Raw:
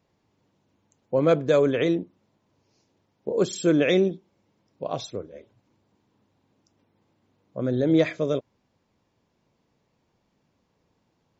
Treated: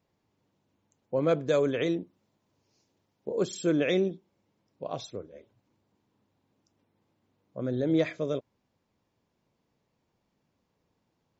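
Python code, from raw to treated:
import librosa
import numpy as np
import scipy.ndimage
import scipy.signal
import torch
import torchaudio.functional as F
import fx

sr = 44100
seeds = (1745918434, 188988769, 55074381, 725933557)

y = fx.high_shelf(x, sr, hz=4700.0, db=6.0, at=(1.37, 3.36))
y = F.gain(torch.from_numpy(y), -5.5).numpy()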